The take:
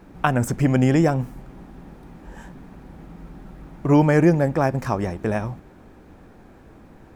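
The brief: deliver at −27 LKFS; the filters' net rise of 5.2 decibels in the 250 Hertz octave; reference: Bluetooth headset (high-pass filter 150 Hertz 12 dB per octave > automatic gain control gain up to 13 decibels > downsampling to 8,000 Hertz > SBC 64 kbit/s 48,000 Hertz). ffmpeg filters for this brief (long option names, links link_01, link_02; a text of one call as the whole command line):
ffmpeg -i in.wav -af "highpass=150,equalizer=frequency=250:width_type=o:gain=7.5,dynaudnorm=maxgain=13dB,aresample=8000,aresample=44100,volume=-10dB" -ar 48000 -c:a sbc -b:a 64k out.sbc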